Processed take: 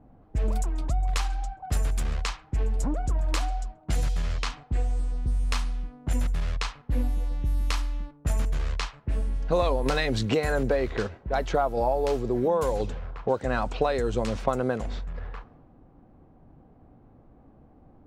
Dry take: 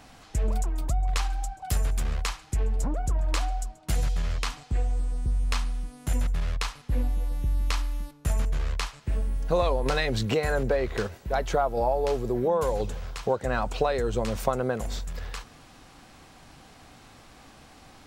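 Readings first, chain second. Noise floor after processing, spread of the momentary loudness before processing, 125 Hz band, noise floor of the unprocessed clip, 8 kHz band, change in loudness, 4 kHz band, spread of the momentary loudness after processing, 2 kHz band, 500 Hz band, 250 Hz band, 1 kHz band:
-55 dBFS, 7 LU, 0.0 dB, -52 dBFS, -2.5 dB, 0.0 dB, -0.5 dB, 8 LU, 0.0 dB, +0.5 dB, +2.0 dB, 0.0 dB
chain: level-controlled noise filter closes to 430 Hz, open at -21.5 dBFS; dynamic bell 280 Hz, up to +5 dB, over -47 dBFS, Q 3.7

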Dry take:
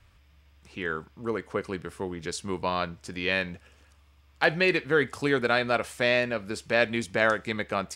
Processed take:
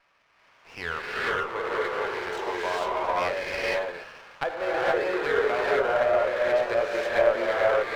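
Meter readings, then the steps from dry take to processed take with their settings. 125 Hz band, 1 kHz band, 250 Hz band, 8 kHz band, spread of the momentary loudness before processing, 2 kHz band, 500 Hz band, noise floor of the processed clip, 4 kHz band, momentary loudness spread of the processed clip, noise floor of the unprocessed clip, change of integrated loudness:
-10.0 dB, +4.5 dB, -6.5 dB, -5.0 dB, 11 LU, -1.0 dB, +4.5 dB, -62 dBFS, -3.0 dB, 10 LU, -60 dBFS, +1.5 dB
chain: high-pass 520 Hz 24 dB/octave; low-pass that closes with the level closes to 840 Hz, closed at -24.5 dBFS; inverse Chebyshev low-pass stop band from 9 kHz, stop band 60 dB; compression 1.5:1, threshold -53 dBFS, peak gain reduction 11 dB; transient shaper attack -3 dB, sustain +5 dB; level rider gain up to 9 dB; gated-style reverb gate 500 ms rising, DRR -6.5 dB; sliding maximum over 5 samples; trim +1.5 dB

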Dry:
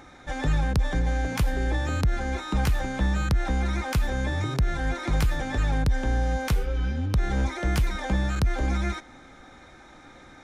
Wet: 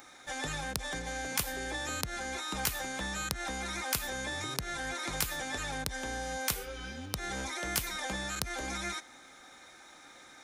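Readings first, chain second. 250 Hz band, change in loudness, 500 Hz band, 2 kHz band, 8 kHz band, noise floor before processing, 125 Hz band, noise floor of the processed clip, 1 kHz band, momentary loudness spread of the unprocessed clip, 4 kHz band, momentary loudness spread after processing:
-12.0 dB, -8.0 dB, -7.5 dB, -3.0 dB, +6.0 dB, -50 dBFS, -18.5 dB, -54 dBFS, -5.5 dB, 3 LU, +1.5 dB, 19 LU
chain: RIAA curve recording; trim -5 dB

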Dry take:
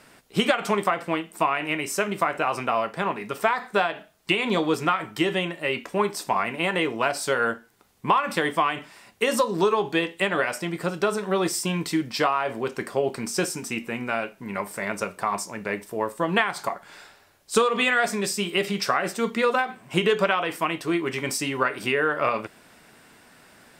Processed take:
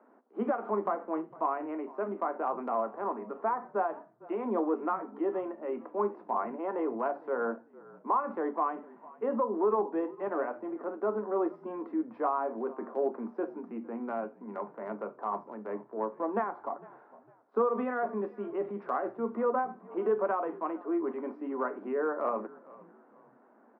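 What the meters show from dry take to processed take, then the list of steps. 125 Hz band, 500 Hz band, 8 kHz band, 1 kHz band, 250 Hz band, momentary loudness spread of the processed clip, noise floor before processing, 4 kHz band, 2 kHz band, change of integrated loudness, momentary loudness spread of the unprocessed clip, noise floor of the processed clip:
under -15 dB, -5.5 dB, under -40 dB, -7.0 dB, -6.5 dB, 9 LU, -54 dBFS, under -40 dB, -19.5 dB, -8.5 dB, 7 LU, -61 dBFS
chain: low-pass 1.1 kHz 24 dB/octave; transient shaper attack -5 dB, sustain 0 dB; Chebyshev high-pass 210 Hz, order 8; frequency-shifting echo 455 ms, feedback 32%, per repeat -42 Hz, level -21 dB; trim -3.5 dB

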